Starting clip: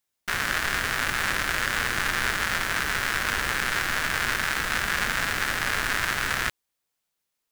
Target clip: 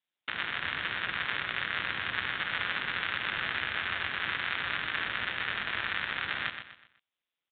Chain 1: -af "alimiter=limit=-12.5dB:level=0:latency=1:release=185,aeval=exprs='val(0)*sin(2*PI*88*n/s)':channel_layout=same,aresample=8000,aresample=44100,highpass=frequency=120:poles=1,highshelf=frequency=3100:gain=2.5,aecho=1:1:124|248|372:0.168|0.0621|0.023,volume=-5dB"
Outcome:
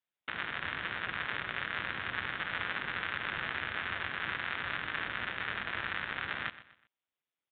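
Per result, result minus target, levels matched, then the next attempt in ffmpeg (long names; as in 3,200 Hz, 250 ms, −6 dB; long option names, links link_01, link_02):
echo-to-direct −7 dB; 4,000 Hz band −2.5 dB
-af "alimiter=limit=-12.5dB:level=0:latency=1:release=185,aeval=exprs='val(0)*sin(2*PI*88*n/s)':channel_layout=same,aresample=8000,aresample=44100,highpass=frequency=120:poles=1,highshelf=frequency=3100:gain=2.5,aecho=1:1:124|248|372|496:0.376|0.139|0.0515|0.019,volume=-5dB"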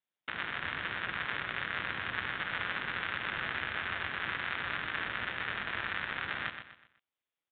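4,000 Hz band −2.5 dB
-af "alimiter=limit=-12.5dB:level=0:latency=1:release=185,aeval=exprs='val(0)*sin(2*PI*88*n/s)':channel_layout=same,aresample=8000,aresample=44100,highpass=frequency=120:poles=1,highshelf=frequency=3100:gain=14,aecho=1:1:124|248|372|496:0.376|0.139|0.0515|0.019,volume=-5dB"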